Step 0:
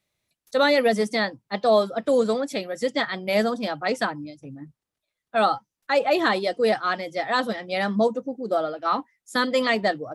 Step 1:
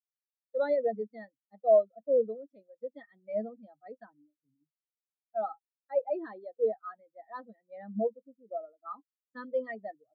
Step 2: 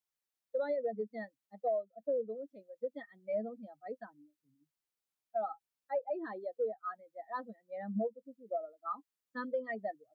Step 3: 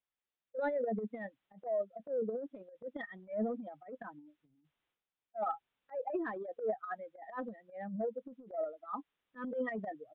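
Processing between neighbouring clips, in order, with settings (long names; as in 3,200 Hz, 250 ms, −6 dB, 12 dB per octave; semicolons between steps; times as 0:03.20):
every bin expanded away from the loudest bin 2.5 to 1; level −5.5 dB
downward compressor 8 to 1, threshold −35 dBFS, peak gain reduction 17 dB; level +3.5 dB
downsampling to 8,000 Hz; transient designer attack −12 dB, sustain +11 dB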